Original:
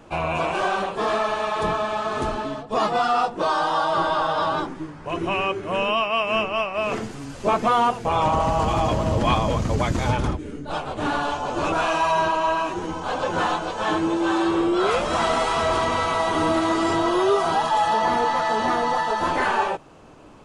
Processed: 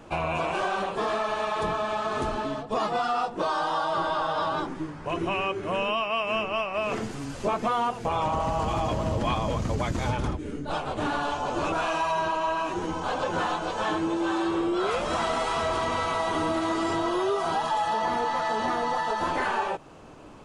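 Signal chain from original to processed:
downward compressor 2.5 to 1, threshold −26 dBFS, peak gain reduction 7.5 dB

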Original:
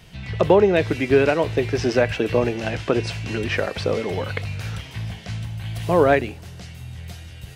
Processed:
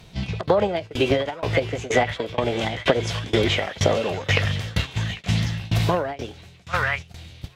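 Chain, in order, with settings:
in parallel at −2 dB: output level in coarse steps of 17 dB
on the sum: high-shelf EQ 7,200 Hz −10 dB
on a send: echo through a band-pass that steps 797 ms, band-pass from 1,500 Hz, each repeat 0.7 octaves, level −3 dB
on the sum: downward compressor 16 to 1, threshold −21 dBFS, peak gain reduction 15 dB
noise gate −30 dBFS, range −10 dB
shaped tremolo saw down 2.1 Hz, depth 95%
formants moved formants +4 semitones
level +8 dB

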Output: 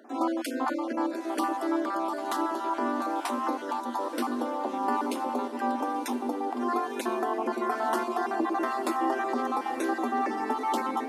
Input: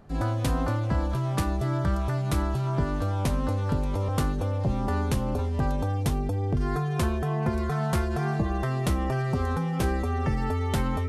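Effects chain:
time-frequency cells dropped at random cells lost 26%
in parallel at +1 dB: brickwall limiter −27 dBFS, peak gain reduction 11 dB
on the sum: Chebyshev high-pass with heavy ripple 230 Hz, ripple 9 dB
feedback delay with all-pass diffusion 990 ms, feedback 66%, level −12 dB
level +4 dB

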